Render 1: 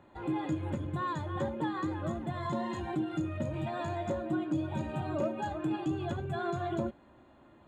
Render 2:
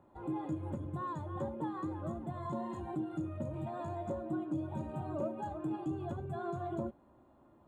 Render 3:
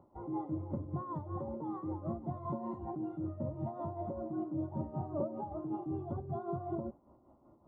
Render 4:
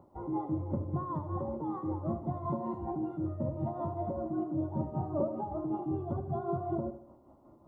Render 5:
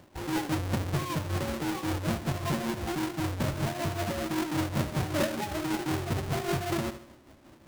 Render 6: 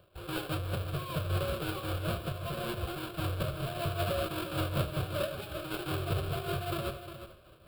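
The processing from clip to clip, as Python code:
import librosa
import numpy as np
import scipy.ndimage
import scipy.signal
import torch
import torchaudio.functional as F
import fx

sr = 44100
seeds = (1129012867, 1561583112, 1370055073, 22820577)

y1 = fx.band_shelf(x, sr, hz=3200.0, db=-10.5, octaves=2.3)
y1 = y1 * librosa.db_to_amplitude(-4.5)
y2 = y1 * (1.0 - 0.6 / 2.0 + 0.6 / 2.0 * np.cos(2.0 * np.pi * 5.2 * (np.arange(len(y1)) / sr)))
y2 = scipy.signal.savgol_filter(y2, 65, 4, mode='constant')
y2 = y2 * librosa.db_to_amplitude(3.0)
y3 = fx.echo_feedback(y2, sr, ms=77, feedback_pct=45, wet_db=-12)
y3 = y3 * librosa.db_to_amplitude(4.0)
y4 = fx.halfwave_hold(y3, sr)
y5 = fx.fixed_phaser(y4, sr, hz=1300.0, stages=8)
y5 = fx.tremolo_random(y5, sr, seeds[0], hz=3.5, depth_pct=55)
y5 = y5 + 10.0 ** (-11.0 / 20.0) * np.pad(y5, (int(356 * sr / 1000.0), 0))[:len(y5)]
y5 = y5 * librosa.db_to_amplitude(3.0)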